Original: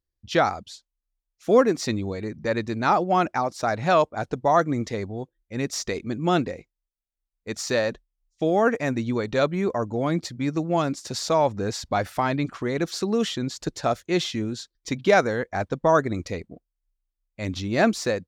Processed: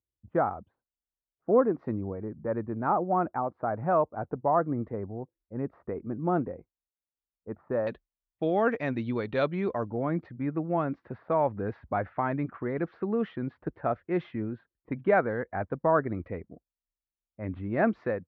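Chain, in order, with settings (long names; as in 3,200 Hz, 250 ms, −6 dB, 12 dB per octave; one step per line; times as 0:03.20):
low-pass filter 1,300 Hz 24 dB per octave, from 0:07.87 3,600 Hz, from 0:09.90 1,900 Hz
low-pass that shuts in the quiet parts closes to 790 Hz, open at −19 dBFS
high-pass filter 50 Hz 24 dB per octave
level −5 dB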